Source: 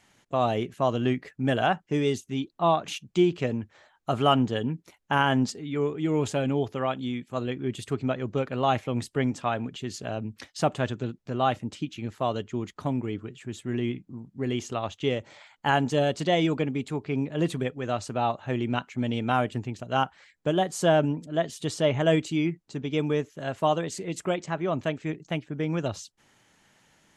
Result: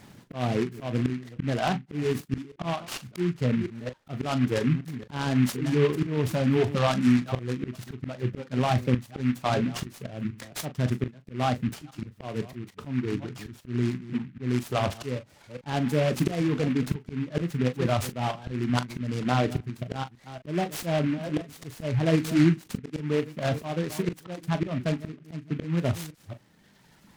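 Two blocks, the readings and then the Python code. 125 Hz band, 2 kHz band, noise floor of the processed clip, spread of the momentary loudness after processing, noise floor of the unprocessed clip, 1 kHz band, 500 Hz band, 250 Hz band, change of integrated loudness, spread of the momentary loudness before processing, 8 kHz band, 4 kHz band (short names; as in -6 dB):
+3.0 dB, -2.5 dB, -58 dBFS, 13 LU, -67 dBFS, -5.0 dB, -3.0 dB, +1.5 dB, -0.5 dB, 10 LU, -1.0 dB, -3.0 dB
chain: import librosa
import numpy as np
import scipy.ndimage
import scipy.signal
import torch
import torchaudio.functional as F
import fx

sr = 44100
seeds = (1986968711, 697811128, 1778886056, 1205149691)

p1 = fx.reverse_delay(x, sr, ms=229, wet_db=-13.5)
p2 = fx.dereverb_blind(p1, sr, rt60_s=1.9)
p3 = fx.peak_eq(p2, sr, hz=150.0, db=13.0, octaves=2.7)
p4 = fx.auto_swell(p3, sr, attack_ms=727.0)
p5 = fx.over_compress(p4, sr, threshold_db=-31.0, ratio=-0.5)
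p6 = p4 + (p5 * 10.0 ** (-1.5 / 20.0))
p7 = fx.room_early_taps(p6, sr, ms=(24, 40), db=(-14.5, -12.5))
y = fx.noise_mod_delay(p7, sr, seeds[0], noise_hz=1800.0, depth_ms=0.068)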